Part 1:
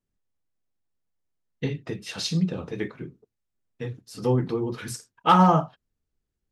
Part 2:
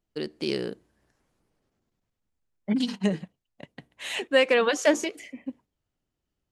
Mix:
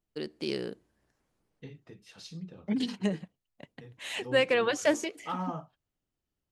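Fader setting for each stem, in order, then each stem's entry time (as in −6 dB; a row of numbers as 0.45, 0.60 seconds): −18.0, −4.5 decibels; 0.00, 0.00 seconds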